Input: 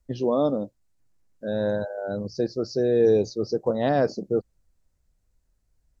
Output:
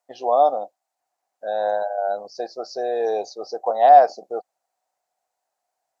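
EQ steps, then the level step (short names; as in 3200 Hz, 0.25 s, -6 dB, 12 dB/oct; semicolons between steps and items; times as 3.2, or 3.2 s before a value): resonant high-pass 740 Hz, resonance Q 9.2; 0.0 dB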